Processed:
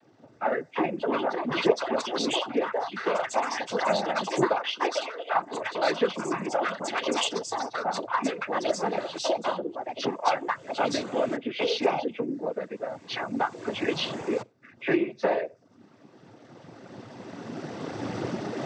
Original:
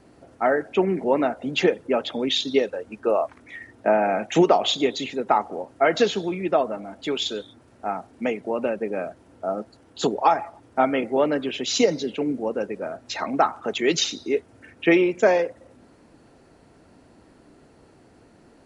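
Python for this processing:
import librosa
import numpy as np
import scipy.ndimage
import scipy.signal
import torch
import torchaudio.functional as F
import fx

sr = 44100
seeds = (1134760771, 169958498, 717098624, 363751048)

y = fx.freq_compress(x, sr, knee_hz=2100.0, ratio=1.5)
y = fx.recorder_agc(y, sr, target_db=-14.5, rise_db_per_s=11.0, max_gain_db=30)
y = 10.0 ** (-8.0 / 20.0) * np.tanh(y / 10.0 ** (-8.0 / 20.0))
y = fx.echo_pitch(y, sr, ms=446, semitones=5, count=3, db_per_echo=-3.0)
y = fx.high_shelf(y, sr, hz=4300.0, db=10.5, at=(6.68, 7.38))
y = fx.rev_schroeder(y, sr, rt60_s=0.35, comb_ms=29, drr_db=15.5)
y = fx.dereverb_blind(y, sr, rt60_s=0.57)
y = fx.noise_vocoder(y, sr, seeds[0], bands=16)
y = fx.highpass(y, sr, hz=fx.line((4.6, 250.0), (5.33, 590.0)), slope=24, at=(4.6, 5.33), fade=0.02)
y = y * 10.0 ** (-5.5 / 20.0)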